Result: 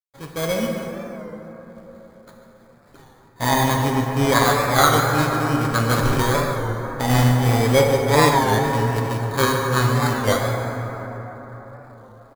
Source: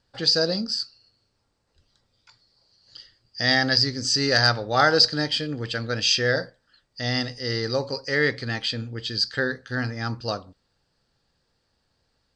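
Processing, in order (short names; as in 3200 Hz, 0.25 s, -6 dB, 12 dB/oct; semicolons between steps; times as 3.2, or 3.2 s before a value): steep low-pass 3000 Hz 96 dB/oct; resonator 72 Hz, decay 0.69 s, harmonics all, mix 40%; 6.2–7.1 compressor 6:1, threshold -31 dBFS, peak gain reduction 9.5 dB; on a send: echo 0.144 s -13 dB; on the sum: sample-and-hold 16×; comb 7.3 ms, depth 59%; AGC gain up to 16 dB; companded quantiser 4-bit; plate-style reverb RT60 4.5 s, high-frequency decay 0.35×, DRR 0.5 dB; record warp 33 1/3 rpm, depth 100 cents; gain -4.5 dB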